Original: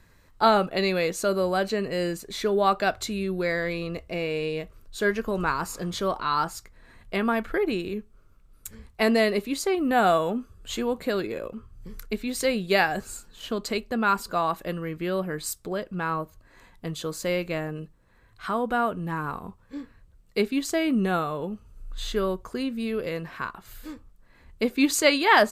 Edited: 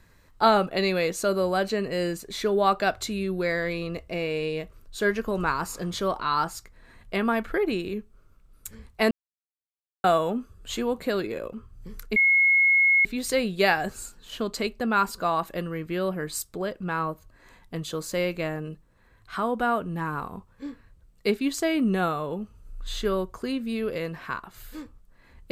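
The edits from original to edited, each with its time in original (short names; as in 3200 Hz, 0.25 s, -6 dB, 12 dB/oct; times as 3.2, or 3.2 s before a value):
9.11–10.04 mute
12.16 add tone 2170 Hz -16 dBFS 0.89 s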